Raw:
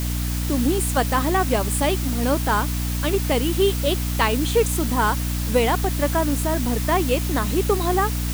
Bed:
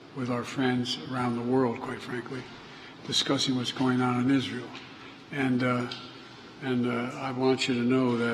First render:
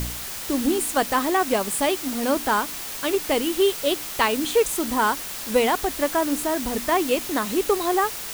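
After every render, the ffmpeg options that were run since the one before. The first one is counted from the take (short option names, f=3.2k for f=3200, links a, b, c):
-af "bandreject=f=60:t=h:w=4,bandreject=f=120:t=h:w=4,bandreject=f=180:t=h:w=4,bandreject=f=240:t=h:w=4,bandreject=f=300:t=h:w=4"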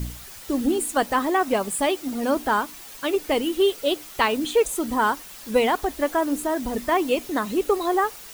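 -af "afftdn=nr=10:nf=-33"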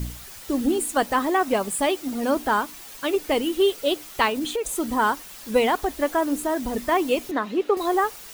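-filter_complex "[0:a]asettb=1/sr,asplit=3[a][b][c];[a]atrim=end=4.294[d];[b]atrim=start=4.29:end=4.79,asetpts=PTS-STARTPTS,afade=t=in:d=0.004:c=qsin,afade=t=out:st=0.496:d=0.004:c=qsin,acompressor=threshold=-22dB:ratio=12:attack=3.2:release=140:knee=1:detection=peak[e];[c]atrim=start=4.786[f];[d][e]acrossfade=d=0.004:c1=hsin:c2=qsin[g];[g][f]acrossfade=d=0.004:c1=qsin:c2=hsin,asettb=1/sr,asplit=3[h][i][j];[h]atrim=end=7.314[k];[i]atrim=start=7.31:end=7.77,asetpts=PTS-STARTPTS,afade=t=in:d=0.004:c=qsin,afade=t=out:st=0.456:d=0.004:c=qsin,acrossover=split=180 4300:gain=0.0891 1 0.141[l][m][n];[l][m][n]amix=inputs=3:normalize=0[o];[j]atrim=start=7.766[p];[k][o]acrossfade=d=0.004:c1=hsin:c2=qsin[q];[q][p]acrossfade=d=0.004:c1=qsin:c2=hsin"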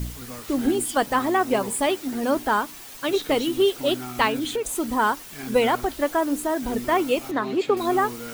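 -filter_complex "[1:a]volume=-9dB[a];[0:a][a]amix=inputs=2:normalize=0"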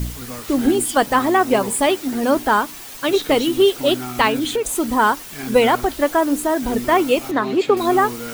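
-af "volume=5.5dB,alimiter=limit=-2dB:level=0:latency=1"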